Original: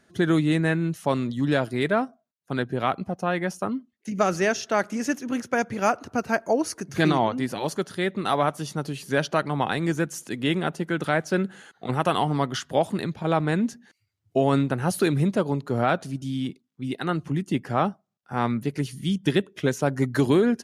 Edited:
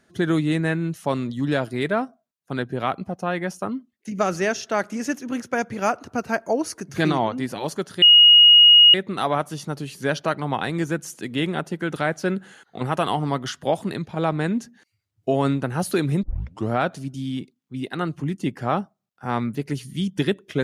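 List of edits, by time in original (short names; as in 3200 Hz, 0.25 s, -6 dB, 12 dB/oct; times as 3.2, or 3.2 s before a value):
8.02 add tone 2880 Hz -7.5 dBFS 0.92 s
15.31 tape start 0.47 s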